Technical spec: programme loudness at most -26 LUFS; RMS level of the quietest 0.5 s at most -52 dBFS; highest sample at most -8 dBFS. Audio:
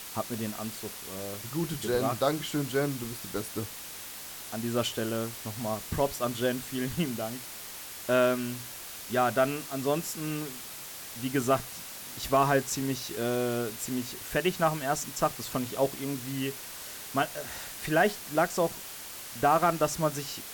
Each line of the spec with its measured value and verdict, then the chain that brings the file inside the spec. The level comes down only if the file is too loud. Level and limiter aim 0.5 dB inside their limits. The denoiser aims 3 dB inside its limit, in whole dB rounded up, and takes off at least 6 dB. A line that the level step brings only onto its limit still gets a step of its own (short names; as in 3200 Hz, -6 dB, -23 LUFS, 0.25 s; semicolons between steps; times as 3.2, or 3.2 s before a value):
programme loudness -30.5 LUFS: OK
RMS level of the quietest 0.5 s -42 dBFS: fail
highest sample -12.5 dBFS: OK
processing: denoiser 13 dB, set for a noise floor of -42 dBFS